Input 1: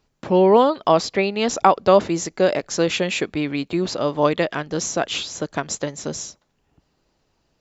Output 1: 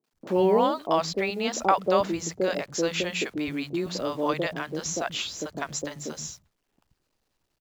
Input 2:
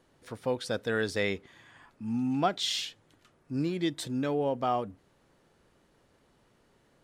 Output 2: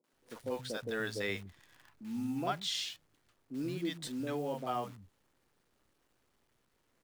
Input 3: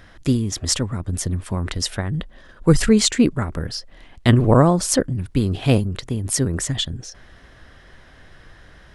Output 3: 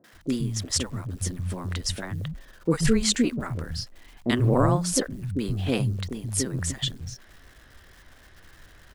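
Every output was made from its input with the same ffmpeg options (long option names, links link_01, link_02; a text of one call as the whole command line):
ffmpeg -i in.wav -filter_complex "[0:a]acrusher=bits=9:dc=4:mix=0:aa=0.000001,acrossover=split=170|620[link_01][link_02][link_03];[link_03]adelay=40[link_04];[link_01]adelay=130[link_05];[link_05][link_02][link_04]amix=inputs=3:normalize=0,volume=-5dB" out.wav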